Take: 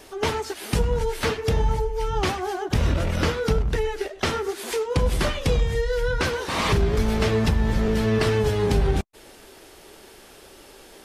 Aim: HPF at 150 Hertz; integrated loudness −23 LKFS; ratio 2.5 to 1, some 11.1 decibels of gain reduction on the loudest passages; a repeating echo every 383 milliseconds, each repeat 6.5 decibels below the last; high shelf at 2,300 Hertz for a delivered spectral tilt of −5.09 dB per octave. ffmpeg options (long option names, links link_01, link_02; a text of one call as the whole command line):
ffmpeg -i in.wav -af "highpass=150,highshelf=frequency=2300:gain=-4,acompressor=threshold=-37dB:ratio=2.5,aecho=1:1:383|766|1149|1532|1915|2298:0.473|0.222|0.105|0.0491|0.0231|0.0109,volume=12dB" out.wav